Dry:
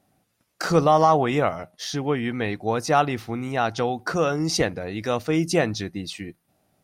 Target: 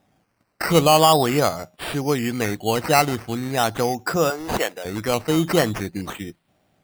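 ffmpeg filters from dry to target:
-filter_complex "[0:a]asettb=1/sr,asplit=3[s0][s1][s2];[s0]atrim=end=4.304[s3];[s1]atrim=start=4.3:end=4.85,asetpts=PTS-STARTPTS,afade=t=in:d=0.004:c=qsin,afade=t=out:st=0.546:d=0.004:c=qsin,highpass=540[s4];[s2]atrim=start=4.846[s5];[s3][s4]acrossfade=d=0.004:c1=hsin:c2=qsin[s6];[s6][s5]acrossfade=d=0.004:c1=qsin:c2=hsin,acrusher=samples=10:mix=1:aa=0.000001:lfo=1:lforange=6:lforate=0.42,volume=1.33"

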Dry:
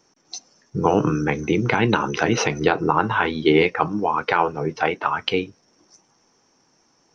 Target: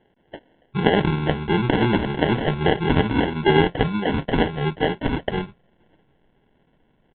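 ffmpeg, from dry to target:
-af "asubboost=boost=6:cutoff=110,aecho=1:1:5.2:0.74,aresample=11025,acrusher=samples=9:mix=1:aa=0.000001,aresample=44100,aresample=8000,aresample=44100,volume=0.891"

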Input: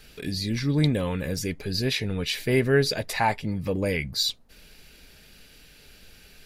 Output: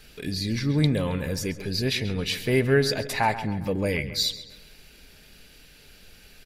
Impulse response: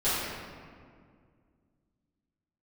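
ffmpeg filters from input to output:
-filter_complex "[0:a]asplit=2[s0][s1];[s1]adelay=135,lowpass=f=4300:p=1,volume=0.237,asplit=2[s2][s3];[s3]adelay=135,lowpass=f=4300:p=1,volume=0.5,asplit=2[s4][s5];[s5]adelay=135,lowpass=f=4300:p=1,volume=0.5,asplit=2[s6][s7];[s7]adelay=135,lowpass=f=4300:p=1,volume=0.5,asplit=2[s8][s9];[s9]adelay=135,lowpass=f=4300:p=1,volume=0.5[s10];[s0][s2][s4][s6][s8][s10]amix=inputs=6:normalize=0"

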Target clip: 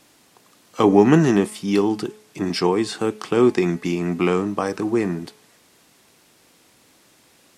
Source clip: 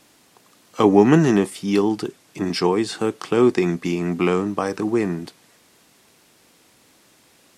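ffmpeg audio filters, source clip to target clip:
-af "bandreject=f=213.6:t=h:w=4,bandreject=f=427.2:t=h:w=4,bandreject=f=640.8:t=h:w=4,bandreject=f=854.4:t=h:w=4,bandreject=f=1068:t=h:w=4,bandreject=f=1281.6:t=h:w=4,bandreject=f=1495.2:t=h:w=4,bandreject=f=1708.8:t=h:w=4,bandreject=f=1922.4:t=h:w=4,bandreject=f=2136:t=h:w=4,bandreject=f=2349.6:t=h:w=4,bandreject=f=2563.2:t=h:w=4,bandreject=f=2776.8:t=h:w=4,bandreject=f=2990.4:t=h:w=4,bandreject=f=3204:t=h:w=4"

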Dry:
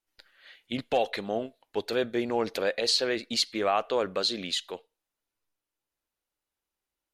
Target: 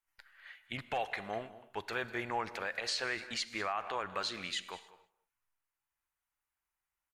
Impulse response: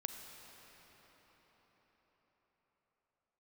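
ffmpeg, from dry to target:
-filter_complex "[0:a]asplit=2[s0][s1];[s1]adelay=198.3,volume=0.141,highshelf=f=4000:g=-4.46[s2];[s0][s2]amix=inputs=2:normalize=0,asplit=2[s3][s4];[1:a]atrim=start_sample=2205,afade=t=out:st=0.36:d=0.01,atrim=end_sample=16317[s5];[s4][s5]afir=irnorm=-1:irlink=0,volume=0.75[s6];[s3][s6]amix=inputs=2:normalize=0,acrossover=split=8100[s7][s8];[s8]acompressor=threshold=0.00178:ratio=4:attack=1:release=60[s9];[s7][s9]amix=inputs=2:normalize=0,equalizer=f=250:t=o:w=1:g=-10,equalizer=f=500:t=o:w=1:g=-10,equalizer=f=1000:t=o:w=1:g=5,equalizer=f=2000:t=o:w=1:g=5,equalizer=f=4000:t=o:w=1:g=-9,alimiter=limit=0.126:level=0:latency=1:release=115,volume=0.501"

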